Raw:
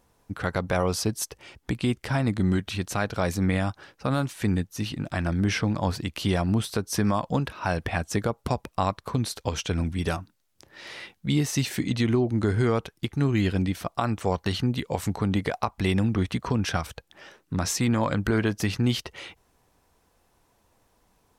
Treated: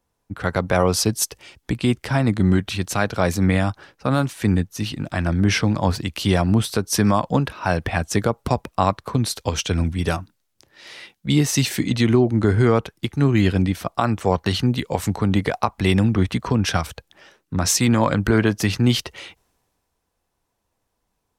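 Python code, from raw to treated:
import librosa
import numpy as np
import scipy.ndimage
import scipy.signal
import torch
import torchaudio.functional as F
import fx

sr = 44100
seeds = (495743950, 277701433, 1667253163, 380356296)

y = fx.band_widen(x, sr, depth_pct=40)
y = F.gain(torch.from_numpy(y), 6.0).numpy()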